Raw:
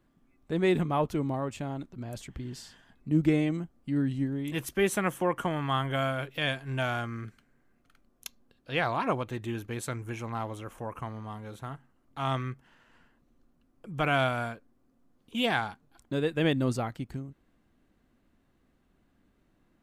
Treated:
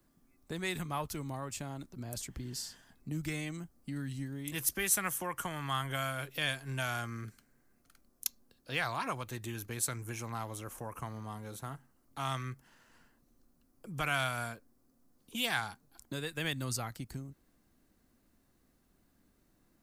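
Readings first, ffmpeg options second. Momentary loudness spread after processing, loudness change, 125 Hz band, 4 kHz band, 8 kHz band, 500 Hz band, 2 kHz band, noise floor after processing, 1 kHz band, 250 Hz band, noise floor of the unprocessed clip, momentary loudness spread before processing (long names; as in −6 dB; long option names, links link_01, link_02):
12 LU, −6.0 dB, −7.0 dB, −2.0 dB, +8.0 dB, −11.5 dB, −3.0 dB, −71 dBFS, −6.0 dB, −11.5 dB, −69 dBFS, 16 LU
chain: -filter_complex "[0:a]acrossover=split=120|1000|2200[link_01][link_02][link_03][link_04];[link_02]acompressor=threshold=-38dB:ratio=6[link_05];[link_01][link_05][link_03][link_04]amix=inputs=4:normalize=0,aexciter=amount=2.4:drive=7.6:freq=4400,volume=-2.5dB"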